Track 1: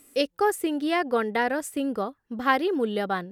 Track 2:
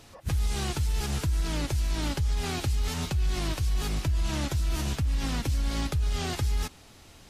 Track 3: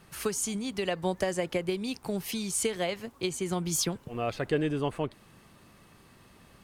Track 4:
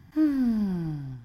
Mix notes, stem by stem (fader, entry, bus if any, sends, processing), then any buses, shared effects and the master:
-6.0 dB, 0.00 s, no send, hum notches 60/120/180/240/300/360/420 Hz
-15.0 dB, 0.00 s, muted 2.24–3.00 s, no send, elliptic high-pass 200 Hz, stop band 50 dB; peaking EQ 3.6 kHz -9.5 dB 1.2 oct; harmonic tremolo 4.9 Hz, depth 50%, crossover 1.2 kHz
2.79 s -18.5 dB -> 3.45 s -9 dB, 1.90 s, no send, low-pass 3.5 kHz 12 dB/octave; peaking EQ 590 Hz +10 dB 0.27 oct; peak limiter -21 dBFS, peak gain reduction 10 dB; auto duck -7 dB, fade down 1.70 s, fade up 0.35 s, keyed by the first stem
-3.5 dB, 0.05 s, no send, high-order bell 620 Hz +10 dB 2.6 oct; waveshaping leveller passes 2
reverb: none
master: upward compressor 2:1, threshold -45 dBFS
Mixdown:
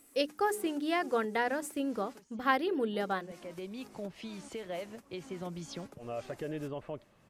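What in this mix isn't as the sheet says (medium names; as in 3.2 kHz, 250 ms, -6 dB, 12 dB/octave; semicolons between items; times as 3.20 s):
stem 4: muted; master: missing upward compressor 2:1, threshold -45 dBFS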